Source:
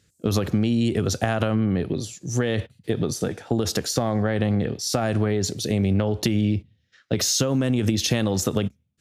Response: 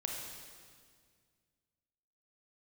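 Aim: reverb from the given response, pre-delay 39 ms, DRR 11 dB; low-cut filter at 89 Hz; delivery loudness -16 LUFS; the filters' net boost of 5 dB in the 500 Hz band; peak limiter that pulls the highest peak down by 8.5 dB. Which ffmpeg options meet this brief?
-filter_complex "[0:a]highpass=89,equalizer=f=500:t=o:g=6,alimiter=limit=0.251:level=0:latency=1,asplit=2[s0][s1];[1:a]atrim=start_sample=2205,adelay=39[s2];[s1][s2]afir=irnorm=-1:irlink=0,volume=0.237[s3];[s0][s3]amix=inputs=2:normalize=0,volume=2.24"

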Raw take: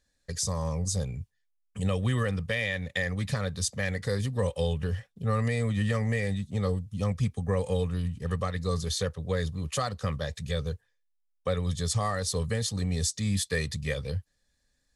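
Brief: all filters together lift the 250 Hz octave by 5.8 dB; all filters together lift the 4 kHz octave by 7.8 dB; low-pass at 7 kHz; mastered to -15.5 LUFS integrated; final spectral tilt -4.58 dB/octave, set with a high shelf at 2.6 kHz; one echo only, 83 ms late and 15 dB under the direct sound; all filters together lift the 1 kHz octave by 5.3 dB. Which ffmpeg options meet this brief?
-af "lowpass=7000,equalizer=f=250:t=o:g=8,equalizer=f=1000:t=o:g=5,highshelf=f=2600:g=5.5,equalizer=f=4000:t=o:g=5,aecho=1:1:83:0.178,volume=3.55"

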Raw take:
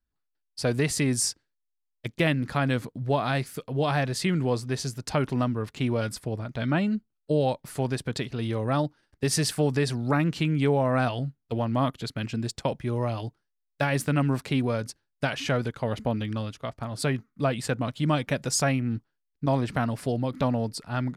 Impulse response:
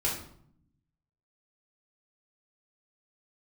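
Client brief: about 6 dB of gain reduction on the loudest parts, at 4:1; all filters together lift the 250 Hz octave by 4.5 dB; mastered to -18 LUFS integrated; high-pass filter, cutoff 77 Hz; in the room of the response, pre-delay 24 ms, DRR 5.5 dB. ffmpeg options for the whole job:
-filter_complex "[0:a]highpass=77,equalizer=f=250:t=o:g=5.5,acompressor=threshold=0.0631:ratio=4,asplit=2[s0][s1];[1:a]atrim=start_sample=2205,adelay=24[s2];[s1][s2]afir=irnorm=-1:irlink=0,volume=0.224[s3];[s0][s3]amix=inputs=2:normalize=0,volume=3.16"

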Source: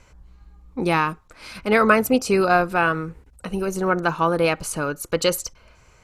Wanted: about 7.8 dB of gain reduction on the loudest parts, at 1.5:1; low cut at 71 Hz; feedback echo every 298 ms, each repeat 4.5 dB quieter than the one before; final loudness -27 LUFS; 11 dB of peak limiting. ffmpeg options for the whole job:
-af "highpass=71,acompressor=threshold=0.0224:ratio=1.5,alimiter=limit=0.0794:level=0:latency=1,aecho=1:1:298|596|894|1192|1490|1788|2086|2384|2682:0.596|0.357|0.214|0.129|0.0772|0.0463|0.0278|0.0167|0.01,volume=1.58"

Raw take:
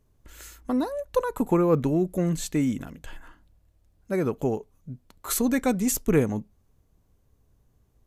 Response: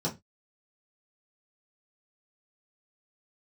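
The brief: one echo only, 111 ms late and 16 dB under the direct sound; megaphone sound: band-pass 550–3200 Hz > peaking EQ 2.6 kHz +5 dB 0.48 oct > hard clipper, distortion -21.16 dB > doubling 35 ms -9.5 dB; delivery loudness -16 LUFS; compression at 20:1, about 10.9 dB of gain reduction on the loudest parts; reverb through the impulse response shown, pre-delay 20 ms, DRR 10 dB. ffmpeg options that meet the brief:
-filter_complex "[0:a]acompressor=threshold=0.0447:ratio=20,aecho=1:1:111:0.158,asplit=2[s0][s1];[1:a]atrim=start_sample=2205,adelay=20[s2];[s1][s2]afir=irnorm=-1:irlink=0,volume=0.15[s3];[s0][s3]amix=inputs=2:normalize=0,highpass=550,lowpass=3200,equalizer=f=2600:t=o:w=0.48:g=5,asoftclip=type=hard:threshold=0.0398,asplit=2[s4][s5];[s5]adelay=35,volume=0.335[s6];[s4][s6]amix=inputs=2:normalize=0,volume=15"

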